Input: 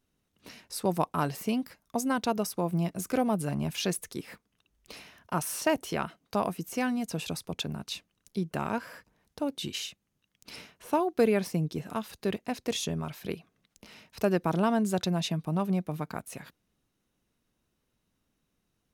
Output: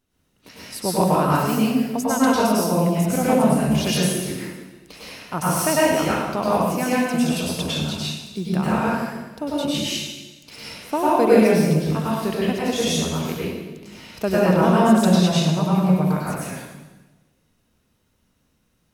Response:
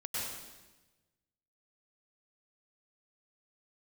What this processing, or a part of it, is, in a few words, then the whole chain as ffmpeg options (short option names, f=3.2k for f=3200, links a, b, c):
bathroom: -filter_complex "[1:a]atrim=start_sample=2205[a];[0:a][a]afir=irnorm=-1:irlink=0,volume=7.5dB"